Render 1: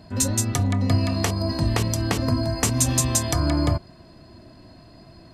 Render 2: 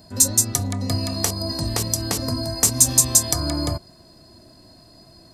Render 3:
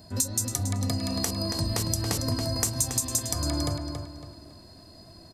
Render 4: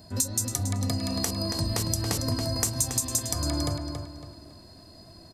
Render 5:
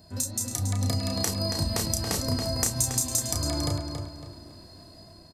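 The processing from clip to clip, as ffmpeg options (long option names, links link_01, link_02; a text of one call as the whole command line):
ffmpeg -i in.wav -af "equalizer=frequency=540:width_type=o:width=1.9:gain=3,aexciter=amount=4.2:drive=5.2:freq=4100,volume=-4.5dB" out.wav
ffmpeg -i in.wav -filter_complex "[0:a]equalizer=frequency=85:width=3.5:gain=7,acompressor=threshold=-22dB:ratio=6,asplit=2[link_01][link_02];[link_02]adelay=278,lowpass=frequency=5000:poles=1,volume=-6dB,asplit=2[link_03][link_04];[link_04]adelay=278,lowpass=frequency=5000:poles=1,volume=0.37,asplit=2[link_05][link_06];[link_06]adelay=278,lowpass=frequency=5000:poles=1,volume=0.37,asplit=2[link_07][link_08];[link_08]adelay=278,lowpass=frequency=5000:poles=1,volume=0.37[link_09];[link_03][link_05][link_07][link_09]amix=inputs=4:normalize=0[link_10];[link_01][link_10]amix=inputs=2:normalize=0,volume=-2dB" out.wav
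ffmpeg -i in.wav -af anull out.wav
ffmpeg -i in.wav -filter_complex "[0:a]dynaudnorm=framelen=250:gausssize=5:maxgain=4.5dB,asplit=2[link_01][link_02];[link_02]adelay=32,volume=-5.5dB[link_03];[link_01][link_03]amix=inputs=2:normalize=0,volume=-4dB" out.wav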